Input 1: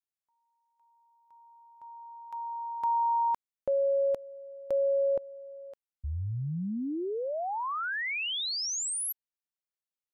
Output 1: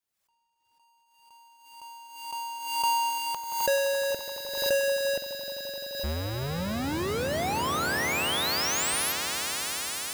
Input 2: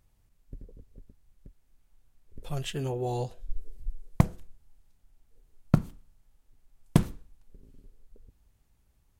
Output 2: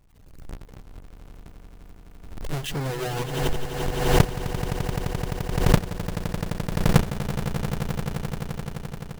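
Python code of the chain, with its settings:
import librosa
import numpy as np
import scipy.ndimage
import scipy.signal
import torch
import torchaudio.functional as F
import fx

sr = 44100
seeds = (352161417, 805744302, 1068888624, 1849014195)

y = fx.halfwave_hold(x, sr)
y = fx.dereverb_blind(y, sr, rt60_s=1.2)
y = fx.echo_swell(y, sr, ms=86, loudest=8, wet_db=-12.5)
y = fx.pre_swell(y, sr, db_per_s=58.0)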